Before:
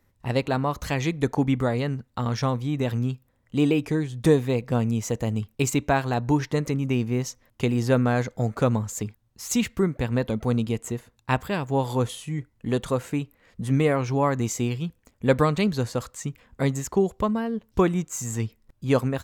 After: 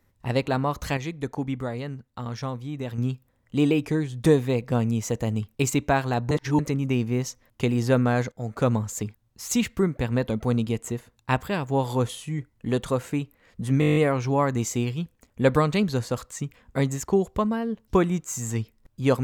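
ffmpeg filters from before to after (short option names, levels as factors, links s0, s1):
-filter_complex "[0:a]asplit=14[s0][s1][s2][s3][s4][s5][s6][s7][s8][s9][s10][s11][s12][s13];[s0]atrim=end=0.972[s14];[s1]atrim=start=0.968:end=2.982,asetpts=PTS-STARTPTS,volume=0.473[s15];[s2]atrim=start=2.978:end=6.312[s16];[s3]atrim=start=6.308:end=6.592,asetpts=PTS-STARTPTS,areverse[s17];[s4]atrim=start=6.588:end=8.32,asetpts=PTS-STARTPTS,afade=t=out:st=1.728:d=0.004:c=hsin:silence=0.199526[s18];[s5]atrim=start=8.32:end=13.822,asetpts=PTS-STARTPTS,afade=t=in:d=0.36:silence=0.199526[s19];[s6]atrim=start=13.798:end=13.822[s20];[s7]atrim=start=13.798:end=13.822[s21];[s8]atrim=start=13.798:end=13.822[s22];[s9]atrim=start=13.798:end=13.822[s23];[s10]atrim=start=13.798:end=13.822[s24];[s11]atrim=start=13.798:end=13.822[s25];[s12]atrim=start=13.798:end=13.822[s26];[s13]atrim=start=13.798[s27];[s14][s15]acrossfade=d=0.004:c1=hsin:c2=hsin[s28];[s28][s16]acrossfade=d=0.004:c1=hsin:c2=hsin[s29];[s29][s17]acrossfade=d=0.004:c1=hsin:c2=hsin[s30];[s18][s19]concat=n=2:v=0:a=1[s31];[s30][s31]acrossfade=d=0.004:c1=hsin:c2=hsin[s32];[s32][s20]acrossfade=d=0.004:c1=hsin:c2=hsin[s33];[s33][s21]acrossfade=d=0.004:c1=hsin:c2=hsin[s34];[s34][s22]acrossfade=d=0.004:c1=hsin:c2=hsin[s35];[s35][s23]acrossfade=d=0.004:c1=hsin:c2=hsin[s36];[s36][s24]acrossfade=d=0.004:c1=hsin:c2=hsin[s37];[s37][s25]acrossfade=d=0.004:c1=hsin:c2=hsin[s38];[s38][s26]acrossfade=d=0.004:c1=hsin:c2=hsin[s39];[s39][s27]acrossfade=d=0.004:c1=hsin:c2=hsin"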